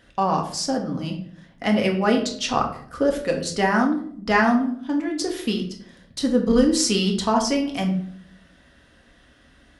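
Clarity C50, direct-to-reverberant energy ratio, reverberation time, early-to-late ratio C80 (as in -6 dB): 8.0 dB, 0.5 dB, 0.60 s, 12.5 dB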